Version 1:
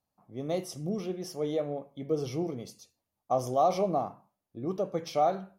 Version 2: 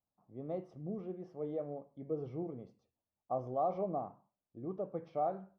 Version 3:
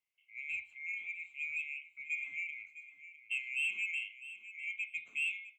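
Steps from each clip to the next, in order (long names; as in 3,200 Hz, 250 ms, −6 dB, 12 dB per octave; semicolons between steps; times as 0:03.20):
low-pass filter 1,200 Hz 12 dB per octave; level −8 dB
neighbouring bands swapped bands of 2,000 Hz; soft clipping −27.5 dBFS, distortion −19 dB; repeating echo 655 ms, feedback 18%, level −14 dB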